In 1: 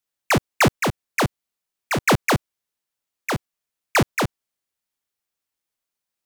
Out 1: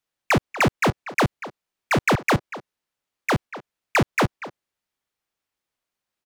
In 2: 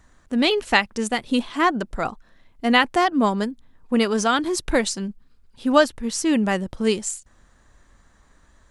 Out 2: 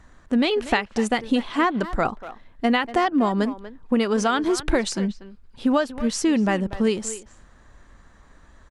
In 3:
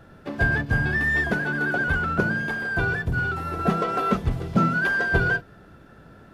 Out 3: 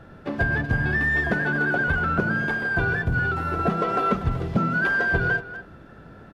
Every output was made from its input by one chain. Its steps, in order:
downward compressor 12 to 1, threshold −21 dBFS
high-shelf EQ 5,500 Hz −10 dB
far-end echo of a speakerphone 240 ms, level −13 dB
loudness normalisation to −23 LKFS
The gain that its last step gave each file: +4.0, +5.0, +3.0 decibels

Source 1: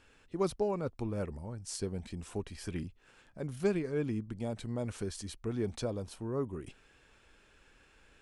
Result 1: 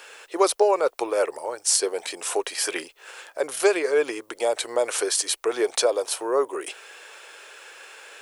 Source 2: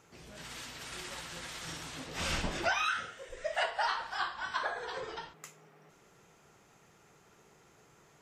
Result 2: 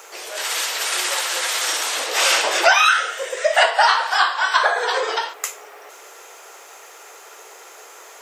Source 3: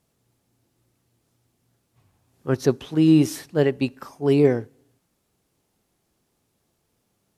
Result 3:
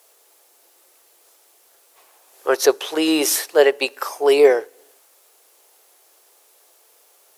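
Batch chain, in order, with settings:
inverse Chebyshev high-pass filter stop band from 220 Hz, stop band 40 dB
high-shelf EQ 9,600 Hz +10 dB
in parallel at +1.5 dB: downward compressor, threshold −40 dBFS
on the sum: normalise the peak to −2 dBFS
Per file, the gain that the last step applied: +13.0, +14.5, +9.0 decibels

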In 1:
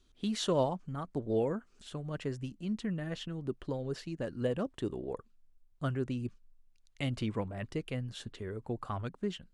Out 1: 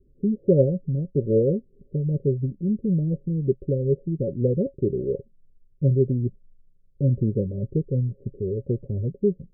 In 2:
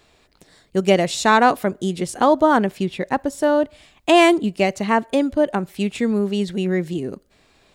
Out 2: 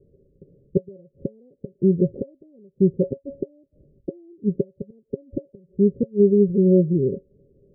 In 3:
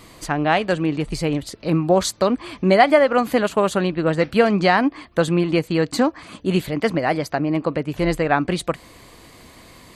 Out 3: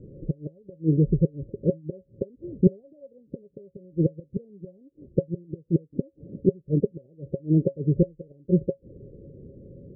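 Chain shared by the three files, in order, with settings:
gate with flip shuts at −11 dBFS, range −33 dB
Chebyshev low-pass with heavy ripple 570 Hz, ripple 9 dB
normalise the peak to −6 dBFS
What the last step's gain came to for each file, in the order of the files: +16.5, +9.0, +8.5 decibels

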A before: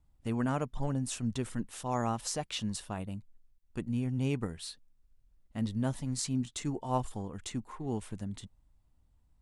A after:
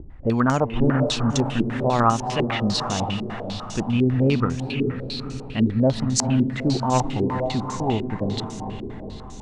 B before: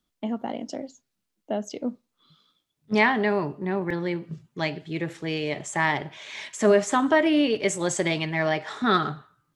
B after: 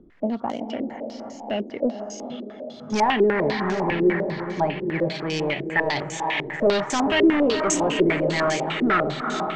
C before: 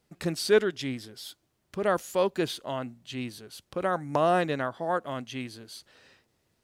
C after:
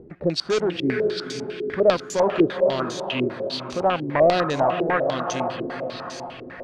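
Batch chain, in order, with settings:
upward compression, threshold −38 dBFS
soft clipping −15.5 dBFS
on a send: feedback delay with all-pass diffusion 461 ms, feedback 55%, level −7 dB
on the sum: gain into a clipping stage and back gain 22.5 dB
low-pass on a step sequencer 10 Hz 380–6,300 Hz
loudness normalisation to −23 LKFS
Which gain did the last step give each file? +11.0, +2.5, +4.5 decibels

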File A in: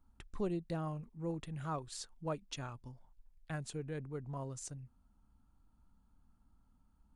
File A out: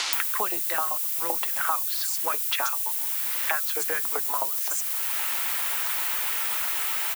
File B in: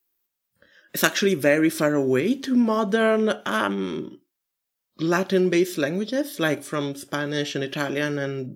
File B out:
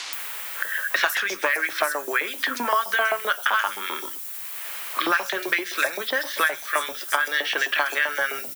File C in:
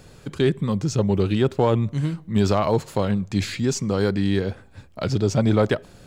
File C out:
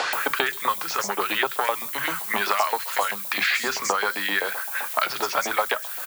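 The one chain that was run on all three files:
downward compressor 3 to 1, threshold −22 dBFS
hard clipping −16 dBFS
auto-filter high-pass saw up 7.7 Hz 770–2,100 Hz
background noise violet −45 dBFS
flanger 0.66 Hz, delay 2.6 ms, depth 3.9 ms, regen −80%
three-band delay without the direct sound mids, lows, highs 30/130 ms, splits 180/5,200 Hz
multiband upward and downward compressor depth 100%
loudness normalisation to −24 LKFS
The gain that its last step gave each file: +21.5, +9.0, +13.5 decibels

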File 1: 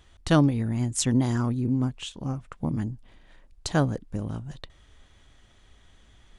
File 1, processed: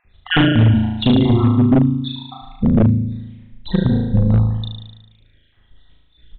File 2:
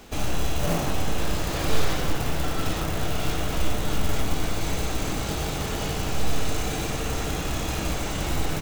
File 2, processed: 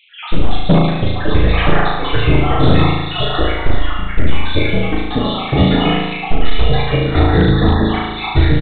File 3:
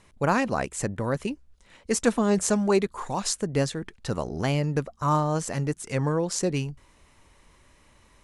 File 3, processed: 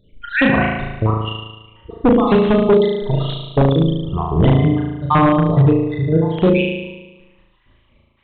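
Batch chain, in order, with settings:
time-frequency cells dropped at random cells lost 65%
noise reduction from a noise print of the clip's start 13 dB
parametric band 970 Hz −8 dB 2.2 octaves
downward compressor 10 to 1, threshold −25 dBFS
square-wave tremolo 0.98 Hz, depth 60%, duty 85%
flutter between parallel walls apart 6.3 metres, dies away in 1.1 s
wave folding −23 dBFS
downsampling to 8,000 Hz
loudness normalisation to −16 LKFS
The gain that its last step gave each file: +17.0, +21.0, +18.0 decibels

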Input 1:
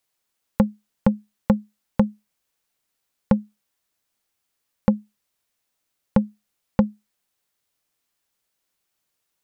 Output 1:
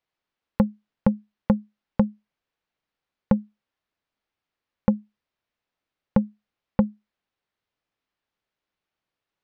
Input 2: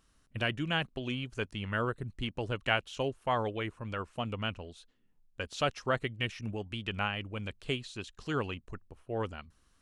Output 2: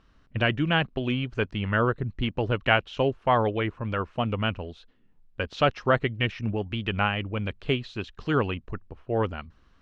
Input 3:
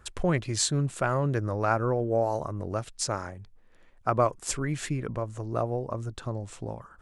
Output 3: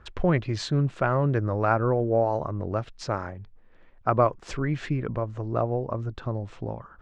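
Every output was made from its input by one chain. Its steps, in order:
high-frequency loss of the air 230 metres
loudness normalisation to −27 LKFS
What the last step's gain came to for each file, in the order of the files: −1.5, +9.5, +3.5 decibels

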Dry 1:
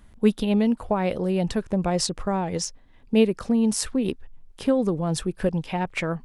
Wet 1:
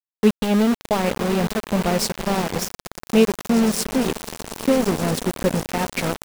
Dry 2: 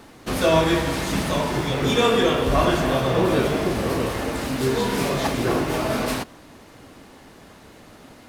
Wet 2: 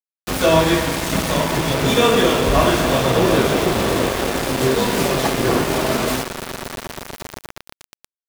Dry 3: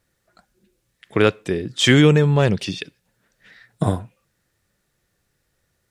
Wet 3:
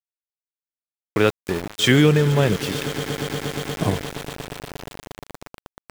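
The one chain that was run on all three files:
echo that builds up and dies away 118 ms, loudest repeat 8, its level −18 dB
centre clipping without the shift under −23.5 dBFS
normalise the peak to −3 dBFS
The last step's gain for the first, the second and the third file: +3.0, +3.5, −2.0 decibels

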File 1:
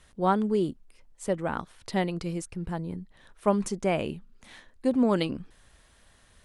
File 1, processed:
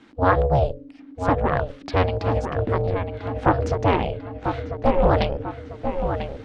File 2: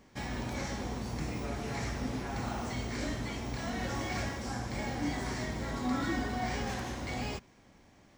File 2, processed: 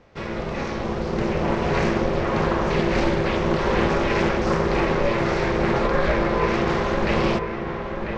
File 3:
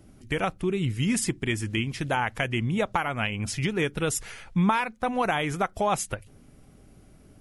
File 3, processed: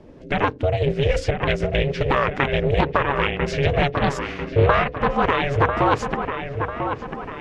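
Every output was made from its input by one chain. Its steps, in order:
camcorder AGC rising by 5.1 dB per second
mains-hum notches 50/100/150/200/250/300 Hz
dynamic equaliser 8,600 Hz, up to −5 dB, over −53 dBFS, Q 1.9
in parallel at −8 dB: soft clipping −18 dBFS
on the sum: ring modulation 280 Hz
high-frequency loss of the air 170 metres
on a send: delay with a low-pass on its return 995 ms, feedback 46%, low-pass 2,800 Hz, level −7 dB
on the sum: highs frequency-modulated by the lows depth 0.39 ms
level +7.5 dB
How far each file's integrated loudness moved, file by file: +5.5, +13.5, +6.0 LU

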